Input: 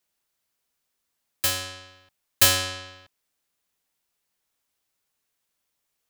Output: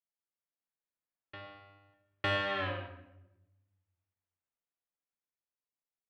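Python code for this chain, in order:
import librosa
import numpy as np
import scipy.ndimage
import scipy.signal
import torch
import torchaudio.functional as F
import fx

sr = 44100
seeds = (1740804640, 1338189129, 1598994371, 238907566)

p1 = fx.doppler_pass(x, sr, speed_mps=25, closest_m=2.4, pass_at_s=2.65)
p2 = scipy.signal.sosfilt(scipy.signal.bessel(8, 1800.0, 'lowpass', norm='mag', fs=sr, output='sos'), p1)
p3 = fx.low_shelf(p2, sr, hz=110.0, db=-6.0)
p4 = 10.0 ** (-37.5 / 20.0) * np.tanh(p3 / 10.0 ** (-37.5 / 20.0))
p5 = p3 + F.gain(torch.from_numpy(p4), -5.0).numpy()
p6 = fx.room_shoebox(p5, sr, seeds[0], volume_m3=350.0, walls='mixed', distance_m=0.75)
y = F.gain(torch.from_numpy(p6), 6.0).numpy()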